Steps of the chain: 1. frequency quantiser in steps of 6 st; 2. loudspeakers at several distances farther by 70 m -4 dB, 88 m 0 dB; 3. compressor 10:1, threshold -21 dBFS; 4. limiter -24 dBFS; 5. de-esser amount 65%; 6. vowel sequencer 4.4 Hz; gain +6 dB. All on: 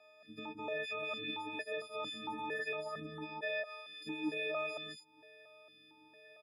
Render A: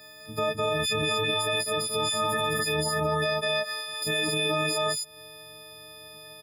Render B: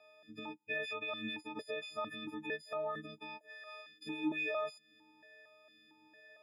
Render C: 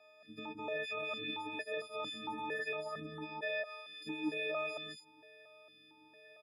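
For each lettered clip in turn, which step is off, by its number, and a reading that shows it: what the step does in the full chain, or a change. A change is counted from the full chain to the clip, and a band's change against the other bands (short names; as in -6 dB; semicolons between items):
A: 6, 8 kHz band +17.5 dB; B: 2, crest factor change +2.0 dB; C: 3, mean gain reduction 5.0 dB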